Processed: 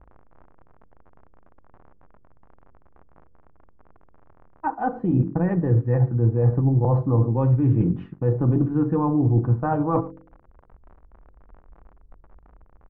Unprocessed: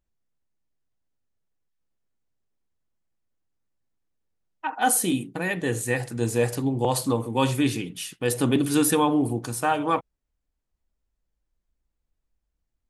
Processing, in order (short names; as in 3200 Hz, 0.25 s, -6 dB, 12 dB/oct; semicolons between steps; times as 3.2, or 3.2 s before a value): bell 75 Hz +12 dB 2.4 oct; speakerphone echo 0.11 s, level -25 dB; transient shaper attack +2 dB, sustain -3 dB; comb 5.9 ms, depth 32%; in parallel at -2.5 dB: limiter -15 dBFS, peak gain reduction 9.5 dB; on the sum: crackle 46/s -31 dBFS; de-hum 46.13 Hz, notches 11; reverse; compressor 10:1, threshold -24 dBFS, peak gain reduction 15 dB; reverse; LPF 1200 Hz 24 dB/oct; low shelf 95 Hz +11.5 dB; gain +5 dB